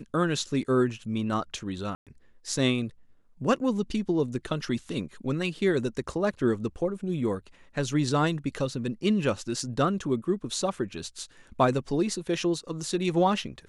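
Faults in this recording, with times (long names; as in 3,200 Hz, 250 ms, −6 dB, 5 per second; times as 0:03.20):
0:01.95–0:02.07: drop-out 117 ms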